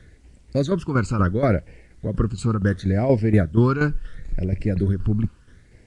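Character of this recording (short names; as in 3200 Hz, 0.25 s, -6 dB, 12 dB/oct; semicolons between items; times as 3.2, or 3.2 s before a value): phasing stages 12, 0.72 Hz, lowest notch 600–1200 Hz; tremolo saw down 4.2 Hz, depth 65%; a quantiser's noise floor 12-bit, dither triangular; Nellymoser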